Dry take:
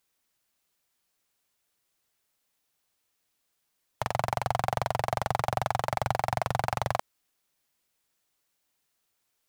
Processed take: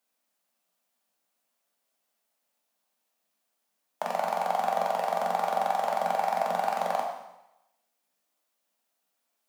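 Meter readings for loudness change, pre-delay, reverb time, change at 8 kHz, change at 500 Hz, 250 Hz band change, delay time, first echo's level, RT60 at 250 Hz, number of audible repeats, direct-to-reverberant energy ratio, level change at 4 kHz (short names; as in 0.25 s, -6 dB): +1.5 dB, 8 ms, 0.90 s, -3.0 dB, +3.0 dB, -2.5 dB, none, none, 0.85 s, none, 0.0 dB, -3.0 dB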